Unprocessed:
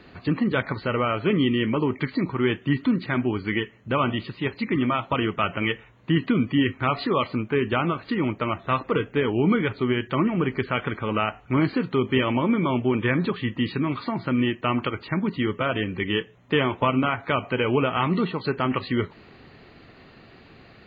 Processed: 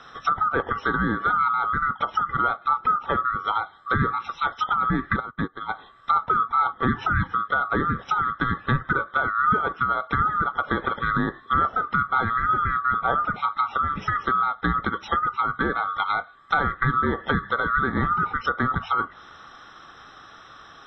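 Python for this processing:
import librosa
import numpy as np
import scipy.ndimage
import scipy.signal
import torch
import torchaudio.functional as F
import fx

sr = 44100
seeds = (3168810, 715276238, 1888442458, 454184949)

y = fx.band_swap(x, sr, width_hz=1000)
y = fx.env_lowpass_down(y, sr, base_hz=1200.0, full_db=-20.5)
y = fx.upward_expand(y, sr, threshold_db=-35.0, expansion=2.5, at=(5.19, 5.68), fade=0.02)
y = F.gain(torch.from_numpy(y), 3.0).numpy()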